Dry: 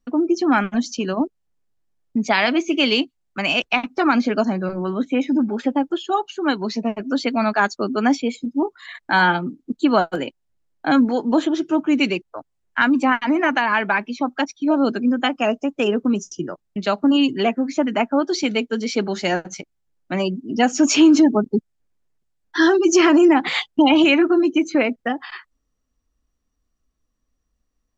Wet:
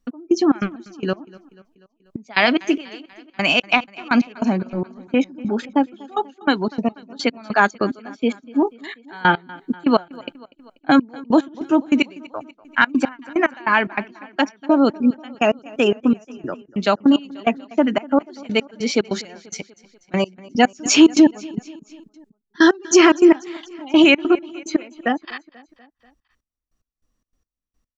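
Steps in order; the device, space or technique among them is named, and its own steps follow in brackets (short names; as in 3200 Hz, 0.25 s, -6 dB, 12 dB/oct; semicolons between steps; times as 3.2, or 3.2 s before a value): trance gate with a delay (step gate "x..xx.x..." 146 bpm -24 dB; feedback echo 0.243 s, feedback 59%, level -22 dB); gain +3 dB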